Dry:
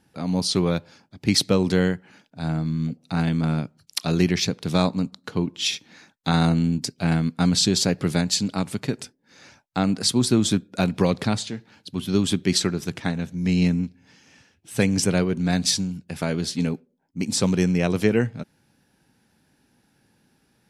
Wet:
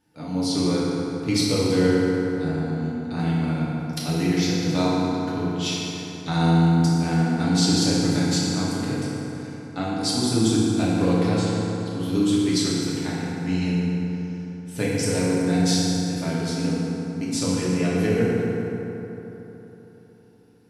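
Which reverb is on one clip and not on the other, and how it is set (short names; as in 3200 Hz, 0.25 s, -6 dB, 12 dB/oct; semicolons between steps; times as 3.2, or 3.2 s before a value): FDN reverb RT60 3.7 s, high-frequency decay 0.5×, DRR -8 dB; gain -9 dB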